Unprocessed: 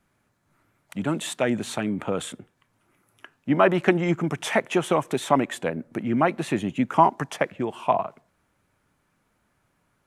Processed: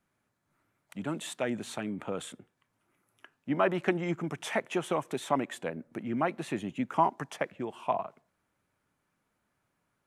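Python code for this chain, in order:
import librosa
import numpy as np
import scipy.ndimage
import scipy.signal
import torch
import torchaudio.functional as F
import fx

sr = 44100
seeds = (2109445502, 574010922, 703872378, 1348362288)

y = fx.low_shelf(x, sr, hz=80.0, db=-7.0)
y = F.gain(torch.from_numpy(y), -8.0).numpy()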